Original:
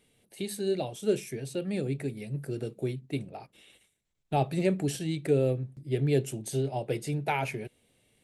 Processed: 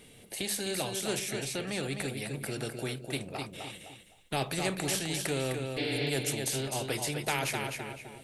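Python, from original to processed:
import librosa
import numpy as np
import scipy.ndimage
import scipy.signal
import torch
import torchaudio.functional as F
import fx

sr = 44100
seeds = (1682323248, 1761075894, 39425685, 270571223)

y = fx.high_shelf(x, sr, hz=9600.0, db=-11.0, at=(1.19, 1.83))
y = fx.spec_repair(y, sr, seeds[0], start_s=5.8, length_s=0.27, low_hz=210.0, high_hz=5800.0, source='after')
y = fx.echo_feedback(y, sr, ms=256, feedback_pct=22, wet_db=-9.0)
y = fx.spectral_comp(y, sr, ratio=2.0)
y = F.gain(torch.from_numpy(y), -2.0).numpy()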